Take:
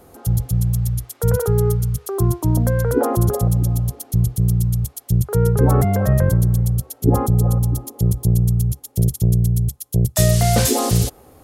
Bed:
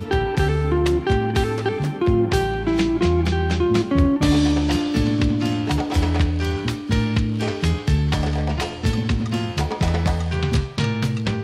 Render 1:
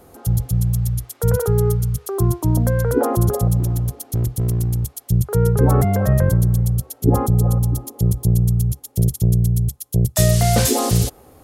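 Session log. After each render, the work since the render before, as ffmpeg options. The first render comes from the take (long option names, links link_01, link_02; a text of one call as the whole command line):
ffmpeg -i in.wav -filter_complex "[0:a]asettb=1/sr,asplit=3[link_01][link_02][link_03];[link_01]atrim=end=3.604[link_04];[link_02]atrim=start=3.6:end=5.04,asetpts=PTS-STARTPTS,afade=type=in:duration=0.004:curve=qsin,afade=type=out:start_time=1.436:duration=0.004:curve=qsin,volume=15.5dB,asoftclip=hard,volume=-15.5dB[link_05];[link_03]atrim=start=5.036[link_06];[link_04][link_05]acrossfade=duration=0.004:curve1=hsin:curve2=qsin[link_07];[link_07][link_06]acrossfade=duration=0.004:curve1=qsin:curve2=hsin" out.wav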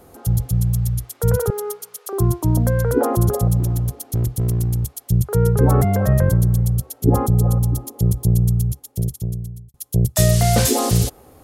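ffmpeg -i in.wav -filter_complex "[0:a]asettb=1/sr,asplit=3[link_01][link_02][link_03];[link_01]atrim=end=1.504[link_04];[link_02]atrim=start=1.5:end=2.13,asetpts=PTS-STARTPTS,afade=type=in:duration=0.004:curve=qsin,afade=type=out:start_time=0.626:duration=0.004:curve=qsin,highpass=frequency=460:width=0.5412,highpass=frequency=460:width=1.3066[link_05];[link_03]atrim=start=2.126[link_06];[link_04][link_05]acrossfade=duration=0.004:curve1=hsin:curve2=qsin[link_07];[link_07][link_06]acrossfade=duration=0.004:curve1=qsin:curve2=hsin,asplit=2[link_08][link_09];[link_08]atrim=end=9.74,asetpts=PTS-STARTPTS,afade=type=out:start_time=8.5:duration=1.24[link_10];[link_09]atrim=start=9.74,asetpts=PTS-STARTPTS,afade=type=in:duration=0.004:curve=hsin[link_11];[link_10][link_11]concat=n=2:v=0:a=1" out.wav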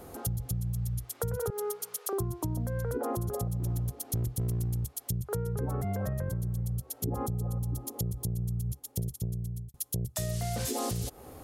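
ffmpeg -i in.wav -af "alimiter=limit=-13.5dB:level=0:latency=1:release=118,acompressor=threshold=-31dB:ratio=4" out.wav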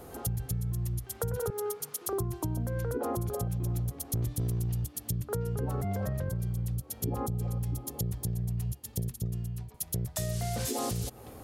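ffmpeg -i in.wav -i bed.wav -filter_complex "[1:a]volume=-32.5dB[link_01];[0:a][link_01]amix=inputs=2:normalize=0" out.wav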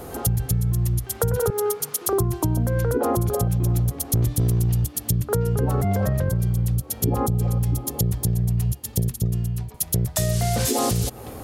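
ffmpeg -i in.wav -af "volume=10.5dB" out.wav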